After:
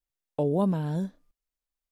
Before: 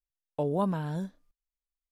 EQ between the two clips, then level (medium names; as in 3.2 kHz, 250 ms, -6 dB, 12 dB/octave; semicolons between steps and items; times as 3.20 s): peaking EQ 300 Hz +3.5 dB 2.9 oct; dynamic bell 1.3 kHz, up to -7 dB, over -42 dBFS, Q 0.94; +1.5 dB